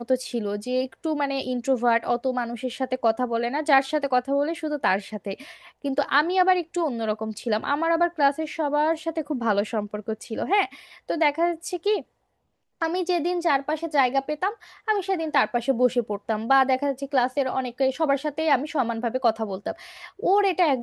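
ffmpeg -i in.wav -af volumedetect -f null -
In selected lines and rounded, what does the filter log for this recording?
mean_volume: -24.7 dB
max_volume: -6.5 dB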